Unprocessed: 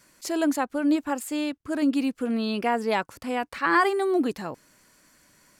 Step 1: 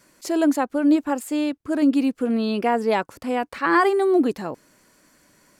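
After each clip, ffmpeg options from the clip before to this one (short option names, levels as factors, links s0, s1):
-af "equalizer=f=390:t=o:w=2.5:g=5.5"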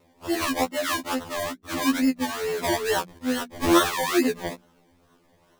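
-af "acrusher=samples=26:mix=1:aa=0.000001:lfo=1:lforange=15.6:lforate=2.3,bandreject=f=60:t=h:w=6,bandreject=f=120:t=h:w=6,bandreject=f=180:t=h:w=6,bandreject=f=240:t=h:w=6,bandreject=f=300:t=h:w=6,afftfilt=real='re*2*eq(mod(b,4),0)':imag='im*2*eq(mod(b,4),0)':win_size=2048:overlap=0.75"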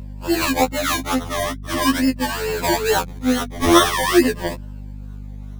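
-af "afftfilt=real='re*pow(10,7/40*sin(2*PI*(1.3*log(max(b,1)*sr/1024/100)/log(2)-(-0.44)*(pts-256)/sr)))':imag='im*pow(10,7/40*sin(2*PI*(1.3*log(max(b,1)*sr/1024/100)/log(2)-(-0.44)*(pts-256)/sr)))':win_size=1024:overlap=0.75,aeval=exprs='val(0)+0.0141*(sin(2*PI*50*n/s)+sin(2*PI*2*50*n/s)/2+sin(2*PI*3*50*n/s)/3+sin(2*PI*4*50*n/s)/4+sin(2*PI*5*50*n/s)/5)':c=same,volume=1.88"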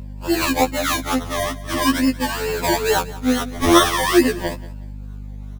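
-af "aecho=1:1:182|364:0.112|0.0281"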